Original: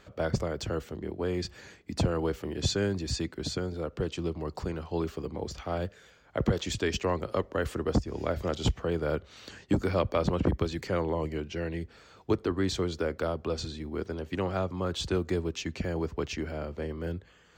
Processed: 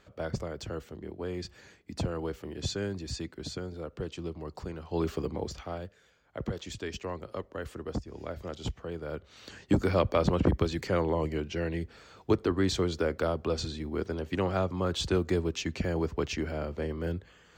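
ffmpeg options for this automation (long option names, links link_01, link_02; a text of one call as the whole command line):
ffmpeg -i in.wav -af "volume=13.5dB,afade=type=in:start_time=4.83:duration=0.31:silence=0.354813,afade=type=out:start_time=5.14:duration=0.68:silence=0.251189,afade=type=in:start_time=9.1:duration=0.66:silence=0.334965" out.wav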